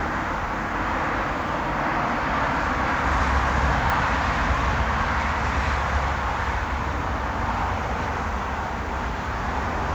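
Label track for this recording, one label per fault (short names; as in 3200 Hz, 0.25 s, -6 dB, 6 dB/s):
3.900000	3.900000	pop -10 dBFS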